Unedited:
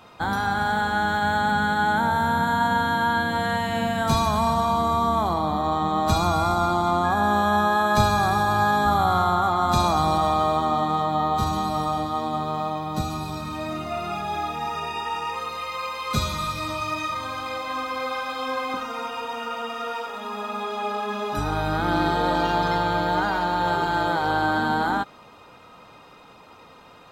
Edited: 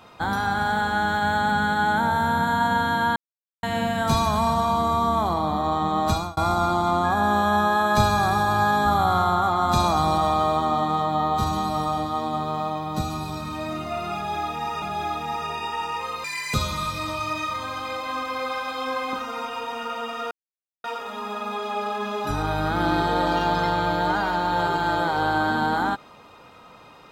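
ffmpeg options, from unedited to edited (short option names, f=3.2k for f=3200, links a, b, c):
-filter_complex "[0:a]asplit=8[a][b][c][d][e][f][g][h];[a]atrim=end=3.16,asetpts=PTS-STARTPTS,afade=t=out:st=3.156:d=0.004:c=hsin[i];[b]atrim=start=3.16:end=3.63,asetpts=PTS-STARTPTS,volume=0[j];[c]atrim=start=3.63:end=6.37,asetpts=PTS-STARTPTS,afade=t=in:d=0.004:c=hsin,afade=t=out:st=2.44:d=0.3[k];[d]atrim=start=6.37:end=14.822,asetpts=PTS-STARTPTS,afade=t=in:d=0.004:c=hsin[l];[e]atrim=start=14.148:end=15.574[m];[f]atrim=start=15.57:end=16.15,asetpts=PTS-STARTPTS,asetrate=85113,aresample=44100[n];[g]atrim=start=16.146:end=19.92,asetpts=PTS-STARTPTS,afade=t=out:st=3.77:d=0.004:c=hsin,apad=pad_dur=0.53[o];[h]atrim=start=19.92,asetpts=PTS-STARTPTS,afade=t=in:d=0.004:c=hsin[p];[i][j][k][l]concat=n=4:v=0:a=1[q];[q][m]acrossfade=d=0.004:c1=hsin:c2=hsin[r];[r][n]acrossfade=d=0.004:c1=hsin:c2=hsin[s];[o][p]concat=n=2:v=0:a=1[t];[s][t]acrossfade=d=0.004:c1=hsin:c2=hsin"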